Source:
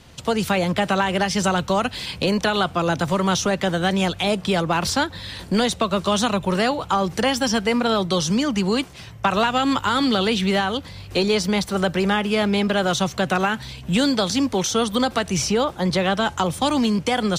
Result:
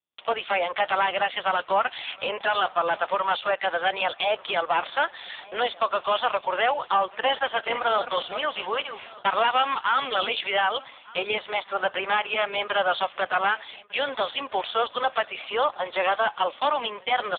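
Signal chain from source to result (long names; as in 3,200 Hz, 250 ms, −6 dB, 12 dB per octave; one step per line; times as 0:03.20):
0:07.06–0:09.19: feedback delay that plays each chunk backwards 221 ms, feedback 43%, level −10 dB
high-pass filter 570 Hz 24 dB per octave
noise gate −43 dBFS, range −56 dB
sine wavefolder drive 8 dB, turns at −7 dBFS
repeating echo 1,199 ms, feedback 33%, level −22.5 dB
level −8 dB
AMR narrowband 5.15 kbit/s 8,000 Hz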